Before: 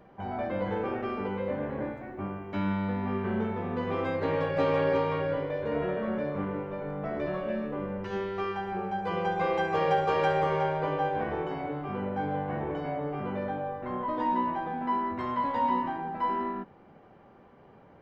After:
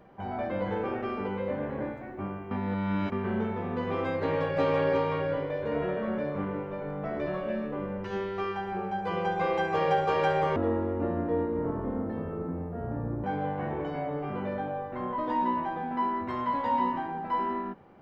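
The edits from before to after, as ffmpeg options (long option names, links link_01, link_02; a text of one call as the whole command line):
ffmpeg -i in.wav -filter_complex "[0:a]asplit=5[link_01][link_02][link_03][link_04][link_05];[link_01]atrim=end=2.512[link_06];[link_02]atrim=start=2.508:end=3.122,asetpts=PTS-STARTPTS,areverse[link_07];[link_03]atrim=start=3.118:end=10.564[link_08];[link_04]atrim=start=10.56:end=12.14,asetpts=PTS-STARTPTS,asetrate=26019,aresample=44100,atrim=end_sample=118098,asetpts=PTS-STARTPTS[link_09];[link_05]atrim=start=12.136[link_10];[link_06][link_07]acrossfade=duration=0.004:curve1=hsin:curve2=hsin[link_11];[link_11][link_08]acrossfade=duration=0.004:curve1=hsin:curve2=hsin[link_12];[link_12][link_09]acrossfade=duration=0.004:curve1=hsin:curve2=hsin[link_13];[link_13][link_10]acrossfade=duration=0.004:curve1=hsin:curve2=hsin" out.wav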